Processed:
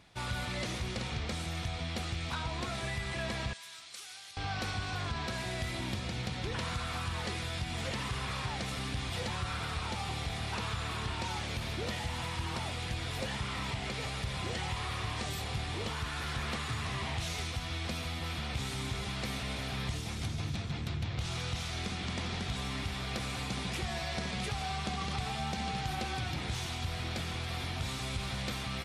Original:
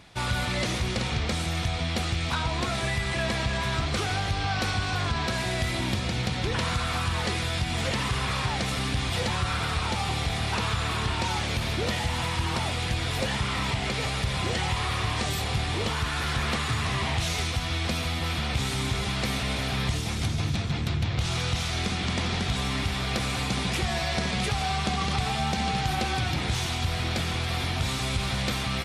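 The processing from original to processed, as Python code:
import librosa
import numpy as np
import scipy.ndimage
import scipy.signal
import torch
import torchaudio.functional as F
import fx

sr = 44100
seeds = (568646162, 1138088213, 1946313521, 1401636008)

y = fx.differentiator(x, sr, at=(3.53, 4.37))
y = F.gain(torch.from_numpy(y), -8.5).numpy()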